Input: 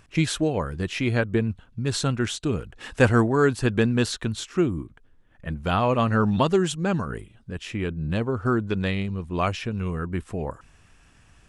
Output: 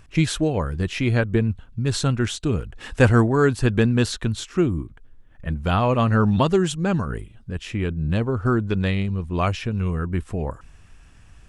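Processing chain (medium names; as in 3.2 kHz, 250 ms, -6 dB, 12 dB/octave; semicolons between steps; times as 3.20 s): bass shelf 91 Hz +10 dB; trim +1 dB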